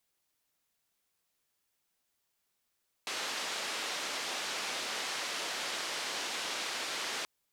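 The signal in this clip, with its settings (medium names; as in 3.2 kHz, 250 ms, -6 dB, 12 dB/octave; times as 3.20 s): noise band 330–4900 Hz, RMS -37 dBFS 4.18 s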